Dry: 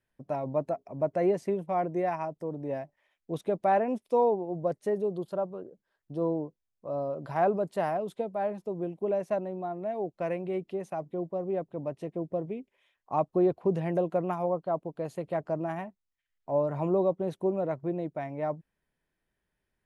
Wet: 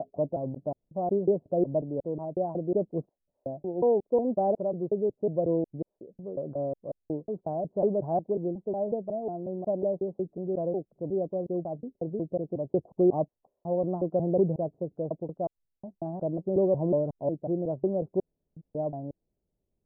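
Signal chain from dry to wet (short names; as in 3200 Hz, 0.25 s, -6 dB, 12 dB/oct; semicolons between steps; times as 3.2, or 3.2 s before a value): slices in reverse order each 0.182 s, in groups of 5; inverse Chebyshev low-pass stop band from 2200 Hz, stop band 60 dB; gain +2.5 dB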